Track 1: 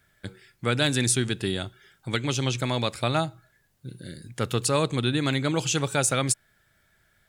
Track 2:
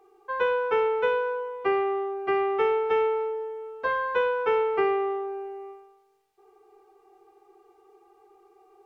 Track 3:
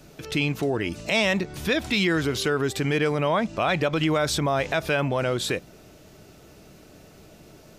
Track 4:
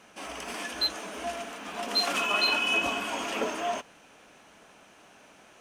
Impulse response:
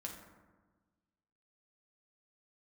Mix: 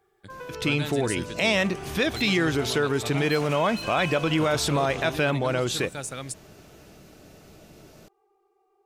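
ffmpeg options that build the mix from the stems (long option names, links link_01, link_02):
-filter_complex "[0:a]volume=-11dB[link_01];[1:a]acompressor=threshold=-26dB:ratio=6,volume=-11dB[link_02];[2:a]adelay=300,volume=-0.5dB[link_03];[3:a]asoftclip=type=tanh:threshold=-27dB,adelay=1350,volume=-6dB[link_04];[link_01][link_02][link_03][link_04]amix=inputs=4:normalize=0"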